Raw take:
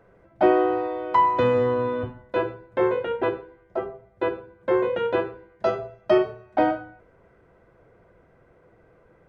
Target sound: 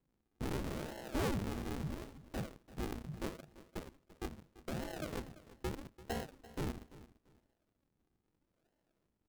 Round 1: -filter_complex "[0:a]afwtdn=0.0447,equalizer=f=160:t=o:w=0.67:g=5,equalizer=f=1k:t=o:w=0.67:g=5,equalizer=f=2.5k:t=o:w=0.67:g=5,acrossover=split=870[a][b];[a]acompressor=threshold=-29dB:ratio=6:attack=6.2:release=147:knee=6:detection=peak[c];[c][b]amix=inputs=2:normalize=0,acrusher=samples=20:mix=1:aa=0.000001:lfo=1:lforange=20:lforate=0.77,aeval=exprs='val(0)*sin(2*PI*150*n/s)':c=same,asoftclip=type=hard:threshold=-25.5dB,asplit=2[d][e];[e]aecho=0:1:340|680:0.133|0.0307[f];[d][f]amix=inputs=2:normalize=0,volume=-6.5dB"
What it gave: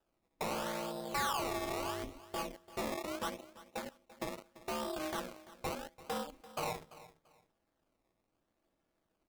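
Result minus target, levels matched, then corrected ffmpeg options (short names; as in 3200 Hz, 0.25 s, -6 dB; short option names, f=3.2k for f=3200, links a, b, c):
decimation with a swept rate: distortion -20 dB; compressor: peak gain reduction -8 dB
-filter_complex "[0:a]afwtdn=0.0447,equalizer=f=160:t=o:w=0.67:g=5,equalizer=f=1k:t=o:w=0.67:g=5,equalizer=f=2.5k:t=o:w=0.67:g=5,acrossover=split=870[a][b];[a]acompressor=threshold=-38.5dB:ratio=6:attack=6.2:release=147:knee=6:detection=peak[c];[c][b]amix=inputs=2:normalize=0,acrusher=samples=73:mix=1:aa=0.000001:lfo=1:lforange=73:lforate=0.77,aeval=exprs='val(0)*sin(2*PI*150*n/s)':c=same,asoftclip=type=hard:threshold=-25.5dB,asplit=2[d][e];[e]aecho=0:1:340|680:0.133|0.0307[f];[d][f]amix=inputs=2:normalize=0,volume=-6.5dB"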